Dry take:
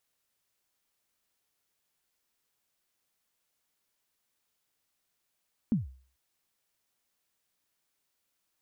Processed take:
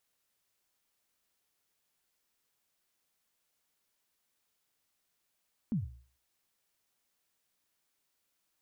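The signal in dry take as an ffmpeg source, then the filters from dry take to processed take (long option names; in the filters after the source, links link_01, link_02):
-f lavfi -i "aevalsrc='0.1*pow(10,-3*t/0.44)*sin(2*PI*(250*0.148/log(65/250)*(exp(log(65/250)*min(t,0.148)/0.148)-1)+65*max(t-0.148,0)))':duration=0.44:sample_rate=44100"
-af "bandreject=frequency=60:width_type=h:width=6,bandreject=frequency=120:width_type=h:width=6,alimiter=level_in=4dB:limit=-24dB:level=0:latency=1:release=16,volume=-4dB"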